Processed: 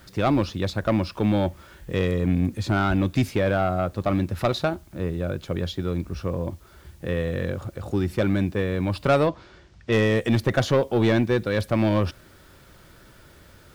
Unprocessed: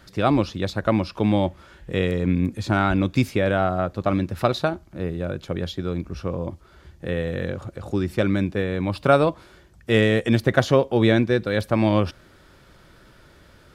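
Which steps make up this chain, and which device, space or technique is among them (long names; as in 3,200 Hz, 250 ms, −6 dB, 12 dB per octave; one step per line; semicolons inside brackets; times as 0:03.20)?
open-reel tape (soft clipping −12.5 dBFS, distortion −14 dB; parametric band 89 Hz +2.5 dB; white noise bed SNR 37 dB)
0:09.27–0:09.92: low-pass filter 5,900 Hz 24 dB per octave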